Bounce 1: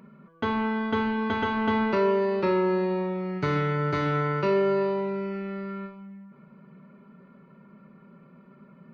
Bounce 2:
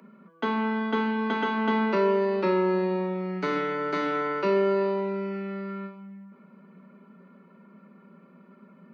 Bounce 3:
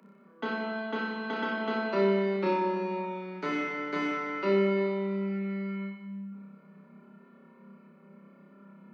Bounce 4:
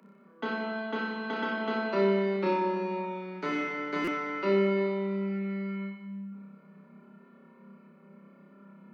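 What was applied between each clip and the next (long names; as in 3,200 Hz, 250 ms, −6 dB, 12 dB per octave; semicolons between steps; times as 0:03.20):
Butterworth high-pass 170 Hz 96 dB per octave
flutter between parallel walls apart 5.2 metres, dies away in 1 s; level −6 dB
buffer that repeats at 0:04.04, samples 256, times 5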